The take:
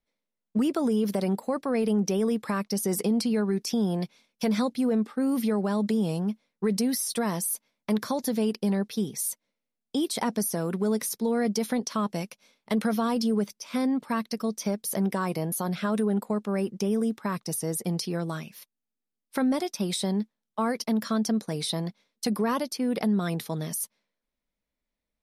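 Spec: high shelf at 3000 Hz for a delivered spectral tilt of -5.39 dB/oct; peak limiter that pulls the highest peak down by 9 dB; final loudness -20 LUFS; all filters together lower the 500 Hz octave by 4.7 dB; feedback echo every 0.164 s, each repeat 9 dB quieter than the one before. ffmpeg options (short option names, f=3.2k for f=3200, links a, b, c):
-af "equalizer=f=500:t=o:g=-5.5,highshelf=f=3k:g=-7.5,alimiter=level_in=1.5dB:limit=-24dB:level=0:latency=1,volume=-1.5dB,aecho=1:1:164|328|492|656:0.355|0.124|0.0435|0.0152,volume=13.5dB"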